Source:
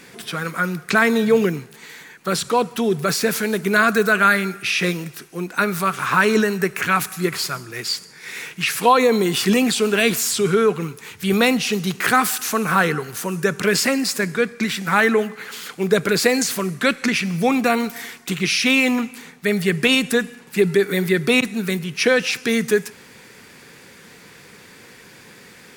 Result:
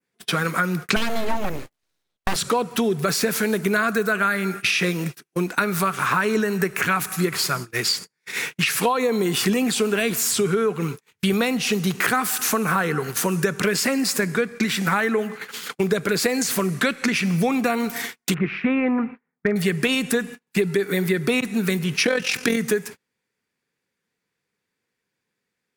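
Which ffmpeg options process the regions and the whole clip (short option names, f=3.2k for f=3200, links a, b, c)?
-filter_complex "[0:a]asettb=1/sr,asplit=3[a][b][c];[a]atrim=end=0.964[d];[b]atrim=start=0.96:end=2.36,asetpts=PTS-STARTPTS,afade=t=in:d=0.004:c=qsin,afade=t=out:st=1.396:d=0.004:c=qsin,highpass=50,aeval=exprs='abs(val(0))':c=same[e];[c]atrim=start=2.356[f];[d][e]acrossfade=d=0.004:c1=hsin:c2=qsin[g];[g][f]acrossfade=d=0.004:c1=qsin:c2=hsin,asettb=1/sr,asplit=3[h][i][j];[h]atrim=end=18.344[k];[i]atrim=start=18.34:end=19.56,asetpts=PTS-STARTPTS,afade=t=in:d=0.004:c=qsin,afade=t=out:st=1.216:d=0.004:c=qsin,lowpass=f=1.8k:w=0.5412,lowpass=f=1.8k:w=1.3066,asoftclip=type=hard:threshold=-11dB[l];[j]atrim=start=19.556[m];[k][l]acrossfade=d=0.004:c1=hsin:c2=qsin[n];[n][m]acrossfade=d=0.004:c1=qsin:c2=hsin,asettb=1/sr,asplit=3[o][p][q];[o]atrim=end=22.044[r];[p]atrim=start=22.04:end=22.57,asetpts=PTS-STARTPTS,afade=t=in:d=0.004:c=qsin,afade=t=out:st=0.526:d=0.004:c=qsin,acontrast=23,tremolo=f=43:d=0.667[s];[q]atrim=start=22.566[t];[r][s]acrossfade=d=0.004:c1=hsin:c2=qsin[u];[u][t]acrossfade=d=0.004:c1=qsin:c2=hsin,agate=range=-42dB:threshold=-32dB:ratio=16:detection=peak,adynamicequalizer=threshold=0.0178:dfrequency=4000:dqfactor=0.81:tfrequency=4000:tqfactor=0.81:attack=5:release=100:ratio=0.375:range=2:mode=cutabove:tftype=bell,acompressor=threshold=-25dB:ratio=6,volume=6.5dB"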